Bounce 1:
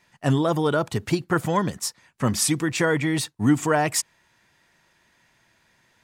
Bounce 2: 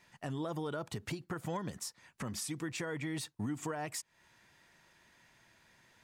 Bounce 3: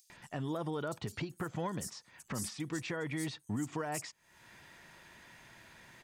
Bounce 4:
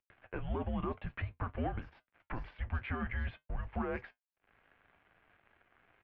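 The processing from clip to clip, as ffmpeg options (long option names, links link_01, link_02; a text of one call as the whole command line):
ffmpeg -i in.wav -af "acompressor=threshold=-32dB:ratio=2.5,alimiter=level_in=2.5dB:limit=-24dB:level=0:latency=1:release=245,volume=-2.5dB,volume=-2.5dB" out.wav
ffmpeg -i in.wav -filter_complex "[0:a]acompressor=mode=upward:threshold=-48dB:ratio=2.5,acrossover=split=5500[link_01][link_02];[link_01]adelay=100[link_03];[link_03][link_02]amix=inputs=2:normalize=0,volume=1dB" out.wav
ffmpeg -i in.wav -af "aeval=exprs='sgn(val(0))*max(abs(val(0))-0.002,0)':channel_layout=same,flanger=delay=8.3:depth=1.2:regen=-64:speed=0.54:shape=triangular,highpass=frequency=170:width_type=q:width=0.5412,highpass=frequency=170:width_type=q:width=1.307,lowpass=frequency=2900:width_type=q:width=0.5176,lowpass=frequency=2900:width_type=q:width=0.7071,lowpass=frequency=2900:width_type=q:width=1.932,afreqshift=-250,volume=7dB" out.wav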